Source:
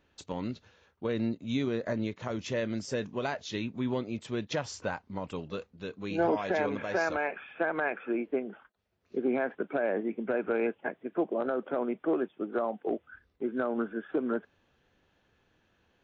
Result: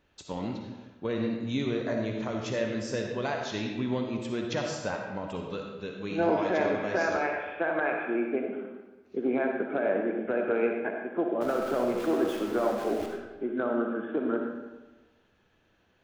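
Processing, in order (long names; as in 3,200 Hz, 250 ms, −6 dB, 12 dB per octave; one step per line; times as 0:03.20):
0:11.41–0:13.06: converter with a step at zero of −37.5 dBFS
comb and all-pass reverb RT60 1.2 s, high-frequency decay 0.75×, pre-delay 20 ms, DRR 1.5 dB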